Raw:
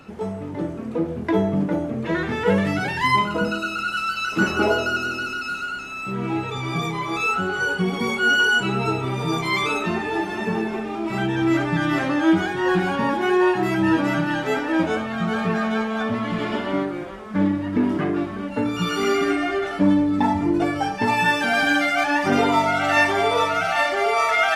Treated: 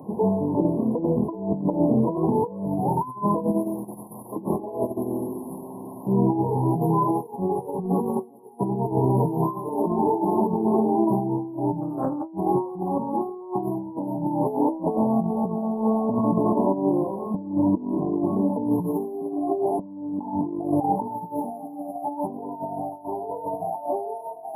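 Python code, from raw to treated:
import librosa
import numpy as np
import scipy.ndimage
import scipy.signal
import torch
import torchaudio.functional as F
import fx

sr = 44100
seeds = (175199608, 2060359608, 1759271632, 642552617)

y = scipy.signal.sosfilt(scipy.signal.butter(4, 120.0, 'highpass', fs=sr, output='sos'), x)
y = fx.peak_eq(y, sr, hz=570.0, db=-2.0, octaves=0.33)
y = fx.over_compress(y, sr, threshold_db=-26.0, ratio=-0.5)
y = fx.brickwall_bandstop(y, sr, low_hz=1100.0, high_hz=10000.0)
y = fx.doppler_dist(y, sr, depth_ms=0.3, at=(11.81, 12.31))
y = y * 10.0 ** (3.5 / 20.0)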